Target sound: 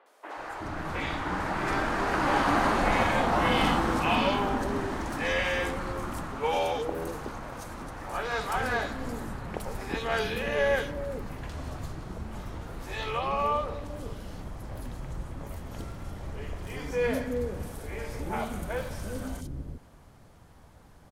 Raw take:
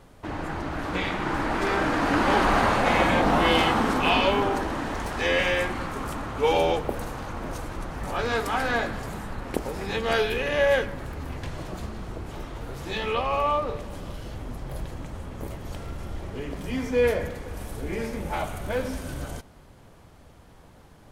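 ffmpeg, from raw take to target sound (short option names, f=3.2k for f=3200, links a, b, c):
-filter_complex "[0:a]asettb=1/sr,asplit=3[a][b][c];[a]atrim=end=5.994[d];[b]atrim=start=5.99:end=8.19,asetpts=PTS-STARTPTS,afade=t=in:d=0.004:c=qsin,afade=t=out:st=2.196:d=0.004:c=qsin,lowshelf=f=200:g=-6[e];[c]atrim=start=8.186[f];[d][e]acrossfade=d=0.004:c1=hsin:c2=qsin[g];[g][f]acrossfade=d=0.004:c1=qsin:c2=hsin,acrossover=split=420|3000[h][i][j];[j]adelay=60[k];[h]adelay=370[l];[l][i][k]amix=inputs=3:normalize=0,volume=-2.5dB"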